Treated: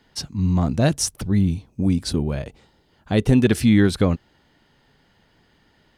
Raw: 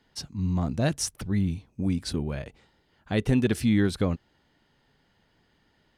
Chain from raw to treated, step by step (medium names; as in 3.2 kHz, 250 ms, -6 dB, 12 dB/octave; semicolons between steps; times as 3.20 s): 0.86–3.41 s: peaking EQ 1.9 kHz -4.5 dB 1.4 oct; trim +7 dB